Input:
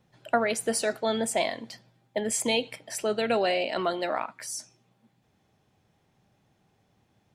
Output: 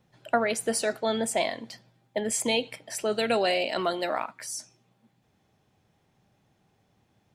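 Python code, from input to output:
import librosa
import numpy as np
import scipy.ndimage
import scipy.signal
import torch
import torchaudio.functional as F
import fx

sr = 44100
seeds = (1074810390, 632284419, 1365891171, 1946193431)

y = fx.high_shelf(x, sr, hz=fx.line((3.11, 4800.0), (4.3, 7900.0)), db=11.0, at=(3.11, 4.3), fade=0.02)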